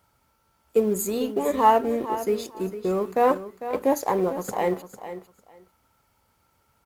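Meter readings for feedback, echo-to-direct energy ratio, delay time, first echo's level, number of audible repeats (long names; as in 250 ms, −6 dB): 17%, −12.0 dB, 450 ms, −12.0 dB, 2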